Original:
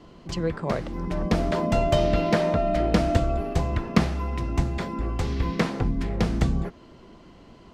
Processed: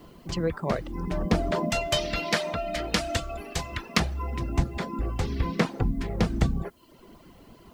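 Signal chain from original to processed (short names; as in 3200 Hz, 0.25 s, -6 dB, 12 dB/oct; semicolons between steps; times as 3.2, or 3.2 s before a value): reverb removal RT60 0.73 s; 1.7–4 tilt shelf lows -9 dB, about 1200 Hz; added noise blue -68 dBFS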